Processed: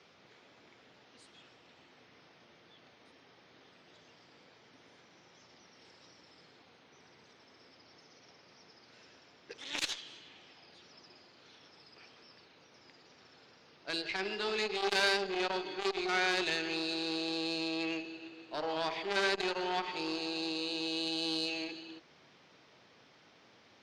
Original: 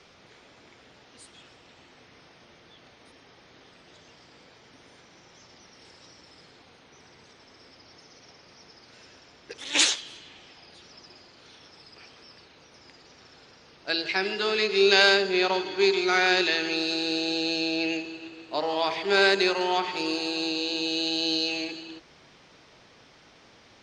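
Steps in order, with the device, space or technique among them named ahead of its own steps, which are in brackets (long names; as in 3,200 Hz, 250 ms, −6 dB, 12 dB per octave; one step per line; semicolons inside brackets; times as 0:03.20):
valve radio (band-pass filter 110–5,900 Hz; tube saturation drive 13 dB, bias 0.5; saturating transformer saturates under 1,900 Hz)
level −4.5 dB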